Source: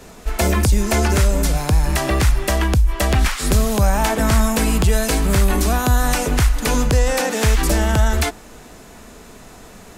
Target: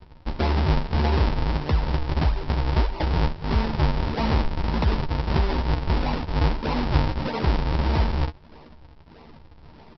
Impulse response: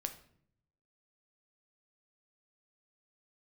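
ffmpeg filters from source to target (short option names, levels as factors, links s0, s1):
-filter_complex "[0:a]aresample=11025,acrusher=samples=32:mix=1:aa=0.000001:lfo=1:lforange=51.2:lforate=1.6,aresample=44100,equalizer=f=910:t=o:w=0.24:g=8.5,asplit=2[s0][s1];[s1]adelay=13,volume=0.501[s2];[s0][s2]amix=inputs=2:normalize=0,volume=0.447"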